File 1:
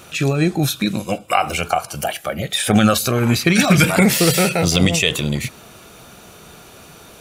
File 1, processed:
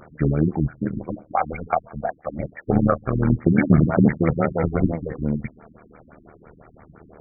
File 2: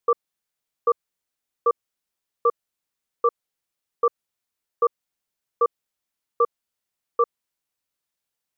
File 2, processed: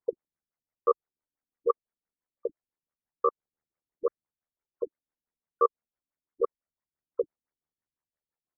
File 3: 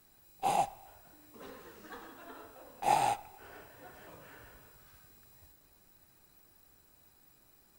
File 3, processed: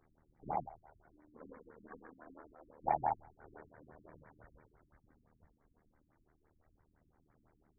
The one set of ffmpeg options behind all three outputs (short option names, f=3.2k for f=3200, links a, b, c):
-af "tremolo=f=77:d=0.824,aphaser=in_gain=1:out_gain=1:delay=4.4:decay=0.26:speed=0.27:type=sinusoidal,afftfilt=real='re*lt(b*sr/1024,320*pow(2400/320,0.5+0.5*sin(2*PI*5.9*pts/sr)))':imag='im*lt(b*sr/1024,320*pow(2400/320,0.5+0.5*sin(2*PI*5.9*pts/sr)))':win_size=1024:overlap=0.75"